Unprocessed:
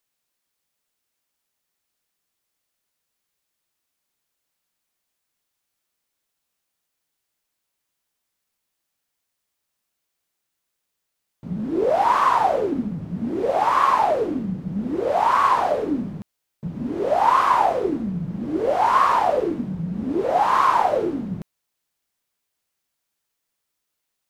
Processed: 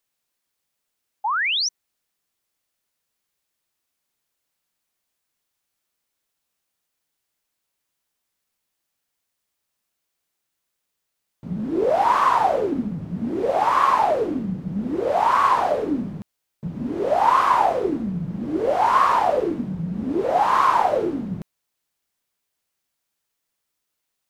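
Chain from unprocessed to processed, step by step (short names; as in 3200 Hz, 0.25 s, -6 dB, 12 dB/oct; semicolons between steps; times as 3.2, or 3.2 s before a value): painted sound rise, 1.24–1.69, 790–6200 Hz -22 dBFS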